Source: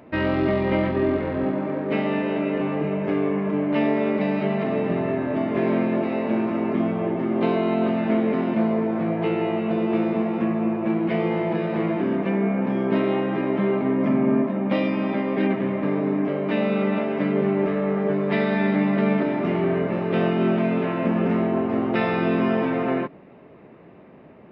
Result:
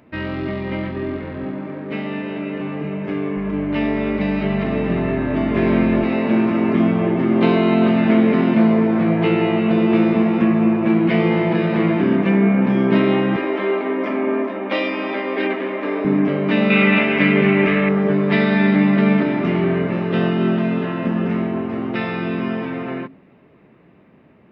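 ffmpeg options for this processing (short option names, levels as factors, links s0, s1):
-filter_complex "[0:a]asettb=1/sr,asplit=3[s0][s1][s2];[s0]atrim=end=3.374[s3];[s1]atrim=start=3.37:end=6.04,asetpts=PTS-STARTPTS,afade=t=in:d=0.004:c=qsin,afade=t=out:st=2.666:d=0.004:c=qsin,aeval=exprs='val(0)+0.0141*(sin(2*PI*50*n/s)+sin(2*PI*2*50*n/s)/2+sin(2*PI*3*50*n/s)/3+sin(2*PI*4*50*n/s)/4+sin(2*PI*5*50*n/s)/5)':c=same[s4];[s2]atrim=start=6.036[s5];[s3][s4]acrossfade=d=0.004:c1=hsin:c2=qsin[s6];[s6][s5]acrossfade=d=0.004:c1=qsin:c2=hsin,asettb=1/sr,asplit=3[s7][s8][s9];[s7]atrim=end=13.364[s10];[s8]atrim=start=13.36:end=16.05,asetpts=PTS-STARTPTS,afade=t=in:d=0.004:c=qsin,afade=t=out:st=2.686:d=0.004:c=qsin,highpass=f=330:w=0.5412,highpass=f=330:w=1.3066[s11];[s9]atrim=start=16.046[s12];[s10][s11]acrossfade=d=0.004:c1=hsin:c2=qsin[s13];[s13][s12]acrossfade=d=0.004:c1=qsin:c2=hsin,asettb=1/sr,asplit=3[s14][s15][s16];[s14]atrim=end=16.704[s17];[s15]atrim=start=16.7:end=17.89,asetpts=PTS-STARTPTS,afade=t=in:d=0.004:c=qsin,afade=t=out:st=1.186:d=0.004:c=qsin,equalizer=f=2400:w=1.2:g=12.5[s18];[s16]atrim=start=17.886[s19];[s17][s18]acrossfade=d=0.004:c1=hsin:c2=qsin[s20];[s20][s19]acrossfade=d=0.004:c1=qsin:c2=hsin,asettb=1/sr,asplit=3[s21][s22][s23];[s21]atrim=end=20.084[s24];[s22]atrim=start=20.08:end=21.28,asetpts=PTS-STARTPTS,afade=t=in:d=0.004:c=qsin,afade=t=out:st=1.196:d=0.004:c=qsin,bandreject=f=2300:w=7.9[s25];[s23]atrim=start=21.276[s26];[s24][s25]acrossfade=d=0.004:c1=hsin:c2=qsin[s27];[s27][s26]acrossfade=d=0.004:c1=qsin:c2=hsin,equalizer=f=630:t=o:w=1.8:g=-7,bandreject=f=53.37:t=h:w=4,bandreject=f=106.74:t=h:w=4,bandreject=f=160.11:t=h:w=4,bandreject=f=213.48:t=h:w=4,bandreject=f=266.85:t=h:w=4,bandreject=f=320.22:t=h:w=4,bandreject=f=373.59:t=h:w=4,bandreject=f=426.96:t=h:w=4,dynaudnorm=f=450:g=21:m=3.76"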